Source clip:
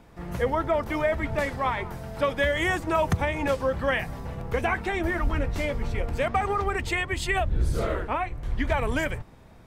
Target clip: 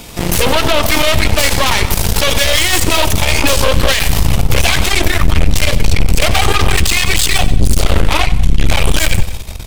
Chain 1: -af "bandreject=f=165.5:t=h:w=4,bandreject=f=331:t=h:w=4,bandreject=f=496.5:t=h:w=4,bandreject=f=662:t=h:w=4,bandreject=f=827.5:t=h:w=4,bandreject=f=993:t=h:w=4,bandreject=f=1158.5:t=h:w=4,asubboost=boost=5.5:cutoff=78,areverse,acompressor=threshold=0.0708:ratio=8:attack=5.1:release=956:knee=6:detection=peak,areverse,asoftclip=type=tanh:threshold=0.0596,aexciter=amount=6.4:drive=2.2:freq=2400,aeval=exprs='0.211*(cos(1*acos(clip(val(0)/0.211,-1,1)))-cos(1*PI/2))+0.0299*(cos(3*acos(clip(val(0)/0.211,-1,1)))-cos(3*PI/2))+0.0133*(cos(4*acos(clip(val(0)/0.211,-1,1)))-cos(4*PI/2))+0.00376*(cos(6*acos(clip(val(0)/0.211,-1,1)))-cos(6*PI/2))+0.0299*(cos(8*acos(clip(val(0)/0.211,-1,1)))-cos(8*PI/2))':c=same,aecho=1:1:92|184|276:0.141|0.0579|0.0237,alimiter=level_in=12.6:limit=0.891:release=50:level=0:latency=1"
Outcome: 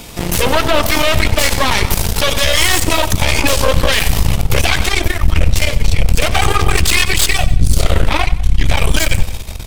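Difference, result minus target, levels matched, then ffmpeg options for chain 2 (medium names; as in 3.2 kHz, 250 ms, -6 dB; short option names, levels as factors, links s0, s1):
compression: peak gain reduction +8 dB
-af "bandreject=f=165.5:t=h:w=4,bandreject=f=331:t=h:w=4,bandreject=f=496.5:t=h:w=4,bandreject=f=662:t=h:w=4,bandreject=f=827.5:t=h:w=4,bandreject=f=993:t=h:w=4,bandreject=f=1158.5:t=h:w=4,asubboost=boost=5.5:cutoff=78,areverse,acompressor=threshold=0.2:ratio=8:attack=5.1:release=956:knee=6:detection=peak,areverse,asoftclip=type=tanh:threshold=0.0596,aexciter=amount=6.4:drive=2.2:freq=2400,aeval=exprs='0.211*(cos(1*acos(clip(val(0)/0.211,-1,1)))-cos(1*PI/2))+0.0299*(cos(3*acos(clip(val(0)/0.211,-1,1)))-cos(3*PI/2))+0.0133*(cos(4*acos(clip(val(0)/0.211,-1,1)))-cos(4*PI/2))+0.00376*(cos(6*acos(clip(val(0)/0.211,-1,1)))-cos(6*PI/2))+0.0299*(cos(8*acos(clip(val(0)/0.211,-1,1)))-cos(8*PI/2))':c=same,aecho=1:1:92|184|276:0.141|0.0579|0.0237,alimiter=level_in=12.6:limit=0.891:release=50:level=0:latency=1"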